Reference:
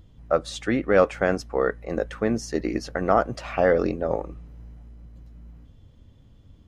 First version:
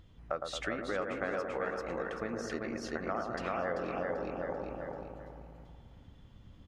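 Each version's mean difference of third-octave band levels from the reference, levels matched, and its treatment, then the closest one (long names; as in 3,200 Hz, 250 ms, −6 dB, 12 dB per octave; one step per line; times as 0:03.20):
9.0 dB: repeating echo 389 ms, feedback 29%, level −3.5 dB
downward compressor 6 to 1, threshold −30 dBFS, peak gain reduction 17 dB
parametric band 1,900 Hz +8 dB 2.8 octaves
on a send: bucket-brigade delay 111 ms, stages 1,024, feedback 68%, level −5 dB
on the sum: level −7 dB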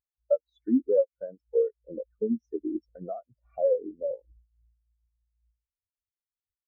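14.0 dB: high-shelf EQ 3,900 Hz +5.5 dB
notch filter 2,500 Hz, Q 16
downward compressor 16 to 1, threshold −25 dBFS, peak gain reduction 14.5 dB
every bin expanded away from the loudest bin 4 to 1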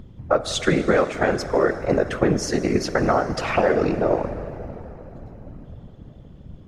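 7.0 dB: downward compressor, threshold −24 dBFS, peak gain reduction 12 dB
dense smooth reverb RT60 4.3 s, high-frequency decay 0.75×, DRR 10 dB
random phases in short frames
one half of a high-frequency compander decoder only
level +9 dB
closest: third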